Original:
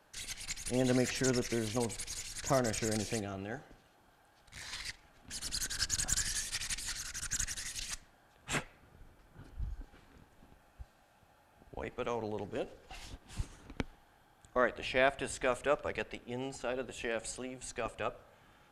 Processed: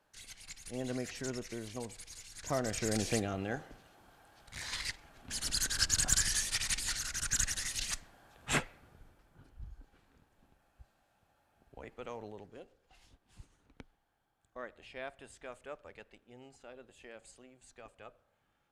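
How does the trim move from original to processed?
2.24 s -8 dB
3.13 s +4 dB
8.59 s +4 dB
9.52 s -7.5 dB
12.25 s -7.5 dB
12.68 s -15 dB

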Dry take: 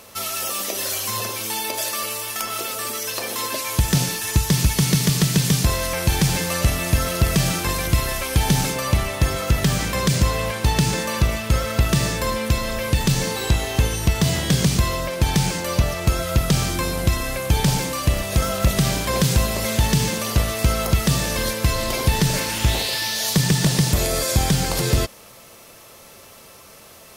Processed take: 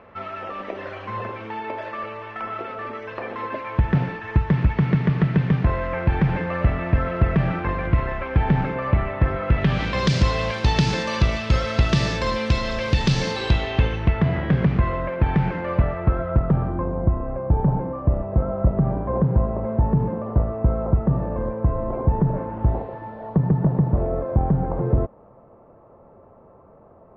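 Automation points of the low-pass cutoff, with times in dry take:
low-pass 24 dB/octave
9.41 s 2 kHz
10.08 s 5 kHz
13.31 s 5 kHz
14.28 s 2 kHz
15.68 s 2 kHz
16.94 s 1 kHz

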